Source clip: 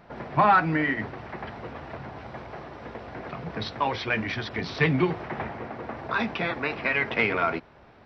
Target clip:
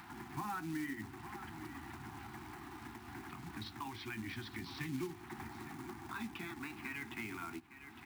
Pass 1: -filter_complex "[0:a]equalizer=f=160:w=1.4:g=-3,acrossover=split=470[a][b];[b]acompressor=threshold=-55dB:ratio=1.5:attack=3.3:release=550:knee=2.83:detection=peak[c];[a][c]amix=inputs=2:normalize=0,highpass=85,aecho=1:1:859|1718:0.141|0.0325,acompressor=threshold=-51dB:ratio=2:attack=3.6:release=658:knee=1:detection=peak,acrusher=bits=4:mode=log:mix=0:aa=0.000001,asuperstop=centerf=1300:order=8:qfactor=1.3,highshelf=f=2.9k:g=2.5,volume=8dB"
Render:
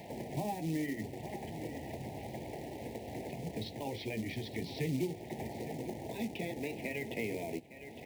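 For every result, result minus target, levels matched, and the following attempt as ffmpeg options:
500 Hz band +7.5 dB; compressor: peak gain reduction -2.5 dB; 125 Hz band +2.5 dB
-filter_complex "[0:a]equalizer=f=160:w=1.4:g=-3,acrossover=split=470[a][b];[b]acompressor=threshold=-55dB:ratio=1.5:attack=3.3:release=550:knee=2.83:detection=peak[c];[a][c]amix=inputs=2:normalize=0,highpass=85,aecho=1:1:859|1718:0.141|0.0325,acompressor=threshold=-51dB:ratio=2:attack=3.6:release=658:knee=1:detection=peak,acrusher=bits=4:mode=log:mix=0:aa=0.000001,asuperstop=centerf=530:order=8:qfactor=1.3,highshelf=f=2.9k:g=2.5,volume=8dB"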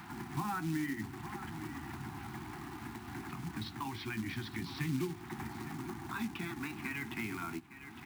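125 Hz band +3.0 dB; compressor: peak gain reduction -2.5 dB
-filter_complex "[0:a]equalizer=f=160:w=1.4:g=-9.5,acrossover=split=470[a][b];[b]acompressor=threshold=-55dB:ratio=1.5:attack=3.3:release=550:knee=2.83:detection=peak[c];[a][c]amix=inputs=2:normalize=0,highpass=85,aecho=1:1:859|1718:0.141|0.0325,acompressor=threshold=-51dB:ratio=2:attack=3.6:release=658:knee=1:detection=peak,acrusher=bits=4:mode=log:mix=0:aa=0.000001,asuperstop=centerf=530:order=8:qfactor=1.3,highshelf=f=2.9k:g=2.5,volume=8dB"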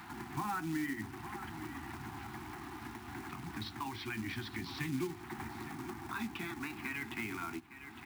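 compressor: peak gain reduction -3.5 dB
-filter_complex "[0:a]equalizer=f=160:w=1.4:g=-9.5,acrossover=split=470[a][b];[b]acompressor=threshold=-55dB:ratio=1.5:attack=3.3:release=550:knee=2.83:detection=peak[c];[a][c]amix=inputs=2:normalize=0,highpass=85,aecho=1:1:859|1718:0.141|0.0325,acompressor=threshold=-58.5dB:ratio=2:attack=3.6:release=658:knee=1:detection=peak,acrusher=bits=4:mode=log:mix=0:aa=0.000001,asuperstop=centerf=530:order=8:qfactor=1.3,highshelf=f=2.9k:g=2.5,volume=8dB"

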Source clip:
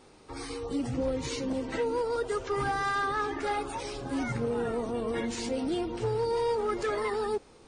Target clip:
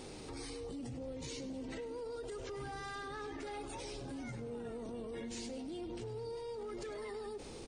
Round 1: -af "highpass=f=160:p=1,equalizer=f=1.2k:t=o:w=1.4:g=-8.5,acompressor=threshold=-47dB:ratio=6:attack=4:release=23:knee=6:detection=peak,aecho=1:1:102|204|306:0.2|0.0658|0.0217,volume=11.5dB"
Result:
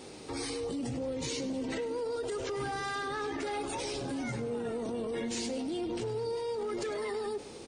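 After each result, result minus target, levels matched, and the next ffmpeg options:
compressor: peak gain reduction -9.5 dB; 125 Hz band -3.0 dB
-af "highpass=f=160:p=1,equalizer=f=1.2k:t=o:w=1.4:g=-8.5,acompressor=threshold=-57.5dB:ratio=6:attack=4:release=23:knee=6:detection=peak,aecho=1:1:102|204|306:0.2|0.0658|0.0217,volume=11.5dB"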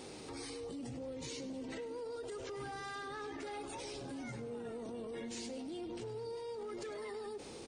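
125 Hz band -3.0 dB
-af "equalizer=f=1.2k:t=o:w=1.4:g=-8.5,acompressor=threshold=-57.5dB:ratio=6:attack=4:release=23:knee=6:detection=peak,aecho=1:1:102|204|306:0.2|0.0658|0.0217,volume=11.5dB"

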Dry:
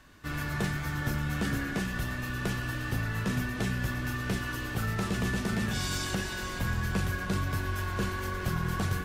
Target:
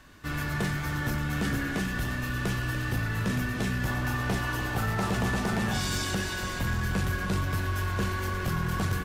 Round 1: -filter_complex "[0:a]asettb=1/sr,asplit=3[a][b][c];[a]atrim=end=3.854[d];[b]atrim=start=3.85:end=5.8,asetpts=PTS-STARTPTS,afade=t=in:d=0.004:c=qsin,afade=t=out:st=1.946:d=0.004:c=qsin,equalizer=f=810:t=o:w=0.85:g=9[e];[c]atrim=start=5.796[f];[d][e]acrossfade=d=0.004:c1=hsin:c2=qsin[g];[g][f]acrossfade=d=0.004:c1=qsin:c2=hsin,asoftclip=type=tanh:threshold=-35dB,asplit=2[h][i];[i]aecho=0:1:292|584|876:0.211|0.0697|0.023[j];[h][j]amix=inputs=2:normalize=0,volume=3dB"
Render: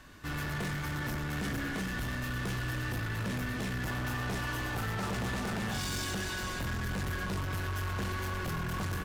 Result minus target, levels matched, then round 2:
soft clip: distortion +11 dB
-filter_complex "[0:a]asettb=1/sr,asplit=3[a][b][c];[a]atrim=end=3.854[d];[b]atrim=start=3.85:end=5.8,asetpts=PTS-STARTPTS,afade=t=in:d=0.004:c=qsin,afade=t=out:st=1.946:d=0.004:c=qsin,equalizer=f=810:t=o:w=0.85:g=9[e];[c]atrim=start=5.796[f];[d][e]acrossfade=d=0.004:c1=hsin:c2=qsin[g];[g][f]acrossfade=d=0.004:c1=qsin:c2=hsin,asoftclip=type=tanh:threshold=-23.5dB,asplit=2[h][i];[i]aecho=0:1:292|584|876:0.211|0.0697|0.023[j];[h][j]amix=inputs=2:normalize=0,volume=3dB"

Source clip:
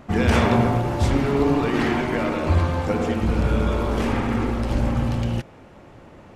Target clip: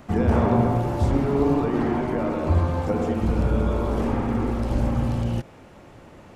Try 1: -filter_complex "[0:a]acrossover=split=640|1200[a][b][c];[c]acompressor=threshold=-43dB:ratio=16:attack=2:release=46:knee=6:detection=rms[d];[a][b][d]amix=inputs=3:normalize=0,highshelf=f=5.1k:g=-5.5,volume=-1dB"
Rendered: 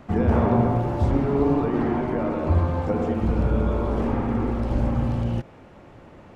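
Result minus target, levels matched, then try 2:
8000 Hz band -8.0 dB
-filter_complex "[0:a]acrossover=split=640|1200[a][b][c];[c]acompressor=threshold=-43dB:ratio=16:attack=2:release=46:knee=6:detection=rms[d];[a][b][d]amix=inputs=3:normalize=0,highshelf=f=5.1k:g=6.5,volume=-1dB"

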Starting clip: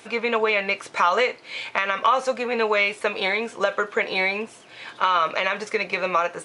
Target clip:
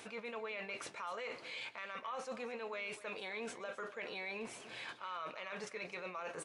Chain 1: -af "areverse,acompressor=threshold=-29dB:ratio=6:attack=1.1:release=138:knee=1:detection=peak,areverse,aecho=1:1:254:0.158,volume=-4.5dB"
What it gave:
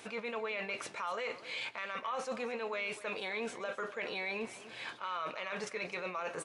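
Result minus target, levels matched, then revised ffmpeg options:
compressor: peak gain reduction -5.5 dB
-af "areverse,acompressor=threshold=-35.5dB:ratio=6:attack=1.1:release=138:knee=1:detection=peak,areverse,aecho=1:1:254:0.158,volume=-4.5dB"

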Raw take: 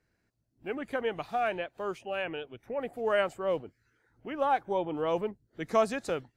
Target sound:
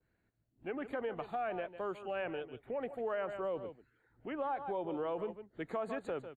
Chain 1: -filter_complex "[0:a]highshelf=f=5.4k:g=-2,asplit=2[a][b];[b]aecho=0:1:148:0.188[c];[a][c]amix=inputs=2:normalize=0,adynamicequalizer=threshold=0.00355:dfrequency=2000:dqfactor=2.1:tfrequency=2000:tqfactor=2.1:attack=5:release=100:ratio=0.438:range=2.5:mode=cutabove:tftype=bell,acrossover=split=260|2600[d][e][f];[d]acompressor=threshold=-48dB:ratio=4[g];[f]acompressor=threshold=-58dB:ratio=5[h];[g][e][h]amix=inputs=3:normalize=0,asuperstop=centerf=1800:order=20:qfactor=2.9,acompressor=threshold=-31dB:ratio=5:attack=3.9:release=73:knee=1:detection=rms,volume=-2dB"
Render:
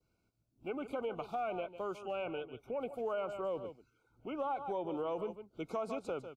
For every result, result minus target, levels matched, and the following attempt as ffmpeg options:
8000 Hz band +6.0 dB; 2000 Hz band -4.0 dB
-filter_complex "[0:a]highshelf=f=5.4k:g=-13,asplit=2[a][b];[b]aecho=0:1:148:0.188[c];[a][c]amix=inputs=2:normalize=0,adynamicequalizer=threshold=0.00355:dfrequency=2000:dqfactor=2.1:tfrequency=2000:tqfactor=2.1:attack=5:release=100:ratio=0.438:range=2.5:mode=cutabove:tftype=bell,acrossover=split=260|2600[d][e][f];[d]acompressor=threshold=-48dB:ratio=4[g];[f]acompressor=threshold=-58dB:ratio=5[h];[g][e][h]amix=inputs=3:normalize=0,asuperstop=centerf=1800:order=20:qfactor=2.9,acompressor=threshold=-31dB:ratio=5:attack=3.9:release=73:knee=1:detection=rms,volume=-2dB"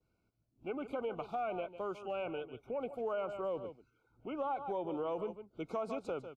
2000 Hz band -5.0 dB
-filter_complex "[0:a]highshelf=f=5.4k:g=-13,asplit=2[a][b];[b]aecho=0:1:148:0.188[c];[a][c]amix=inputs=2:normalize=0,adynamicequalizer=threshold=0.00355:dfrequency=2000:dqfactor=2.1:tfrequency=2000:tqfactor=2.1:attack=5:release=100:ratio=0.438:range=2.5:mode=cutabove:tftype=bell,acrossover=split=260|2600[d][e][f];[d]acompressor=threshold=-48dB:ratio=4[g];[f]acompressor=threshold=-58dB:ratio=5[h];[g][e][h]amix=inputs=3:normalize=0,asuperstop=centerf=5500:order=20:qfactor=2.9,acompressor=threshold=-31dB:ratio=5:attack=3.9:release=73:knee=1:detection=rms,volume=-2dB"

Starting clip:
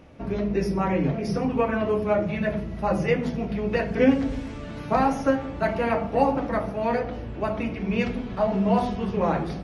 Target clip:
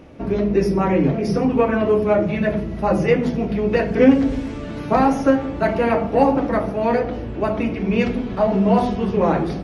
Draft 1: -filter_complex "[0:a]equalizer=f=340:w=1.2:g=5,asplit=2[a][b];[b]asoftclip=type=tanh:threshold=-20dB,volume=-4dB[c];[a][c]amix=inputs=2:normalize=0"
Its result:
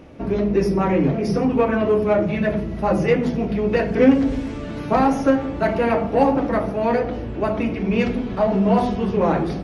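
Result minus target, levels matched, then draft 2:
soft clip: distortion +7 dB
-filter_complex "[0:a]equalizer=f=340:w=1.2:g=5,asplit=2[a][b];[b]asoftclip=type=tanh:threshold=-12.5dB,volume=-4dB[c];[a][c]amix=inputs=2:normalize=0"

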